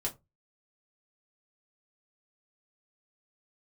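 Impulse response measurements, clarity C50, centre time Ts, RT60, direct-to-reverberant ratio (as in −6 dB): 17.5 dB, 12 ms, 0.20 s, −2.5 dB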